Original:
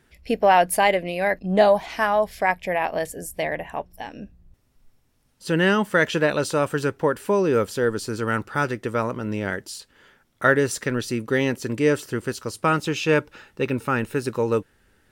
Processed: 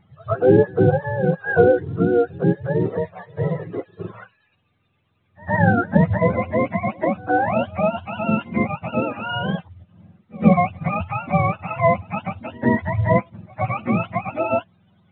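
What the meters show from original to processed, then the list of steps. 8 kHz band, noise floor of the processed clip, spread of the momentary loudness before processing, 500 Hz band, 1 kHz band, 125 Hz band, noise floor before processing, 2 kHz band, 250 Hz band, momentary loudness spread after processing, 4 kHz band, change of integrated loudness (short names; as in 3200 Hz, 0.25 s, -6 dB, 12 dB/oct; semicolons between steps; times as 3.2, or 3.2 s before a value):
under -40 dB, -66 dBFS, 12 LU, +1.5 dB, +0.5 dB, +8.0 dB, -64 dBFS, -2.5 dB, +4.5 dB, 12 LU, -7.0 dB, +2.0 dB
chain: spectrum mirrored in octaves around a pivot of 550 Hz; reverse echo 0.115 s -23.5 dB; gain +3 dB; µ-law 64 kbps 8000 Hz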